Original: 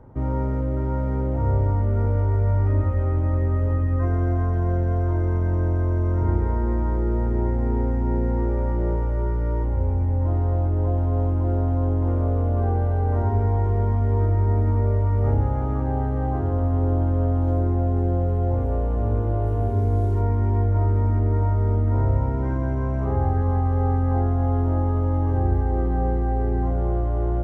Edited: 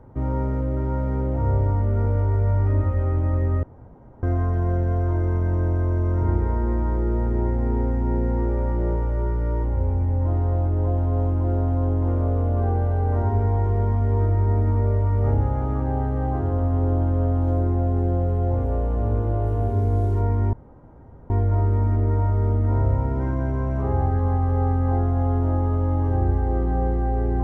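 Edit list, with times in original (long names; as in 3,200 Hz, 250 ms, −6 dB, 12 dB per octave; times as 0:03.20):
0:03.63–0:04.23: fill with room tone
0:20.53: splice in room tone 0.77 s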